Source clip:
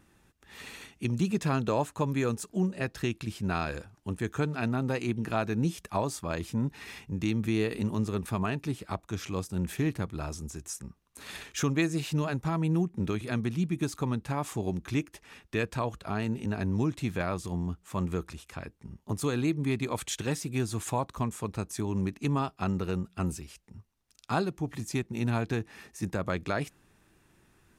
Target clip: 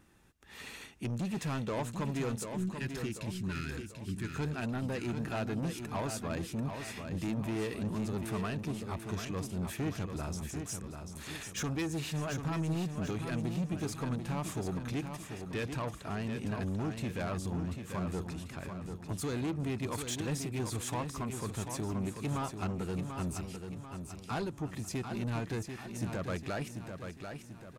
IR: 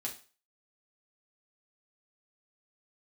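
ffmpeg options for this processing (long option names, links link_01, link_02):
-filter_complex "[0:a]asoftclip=type=tanh:threshold=-29dB,asettb=1/sr,asplit=3[link_01][link_02][link_03];[link_01]atrim=end=2.554[link_04];[link_02]atrim=start=2.55:end=4.36,asetpts=PTS-STARTPTS,afade=type=in:duration=0.004:curve=qsin,afade=type=out:start_time=1.806:duration=0.004:curve=qsin,asuperstop=centerf=740:order=8:qfactor=0.74[link_05];[link_03]atrim=start=4.356[link_06];[link_04][link_05]acrossfade=duration=0.004:curve1=hsin:curve2=qsin[link_07];[link_07][link_06]acrossfade=duration=0.004:curve1=qsin:curve2=hsin,aecho=1:1:740|1480|2220|2960|3700|4440:0.447|0.21|0.0987|0.0464|0.0218|0.0102,volume=-1.5dB"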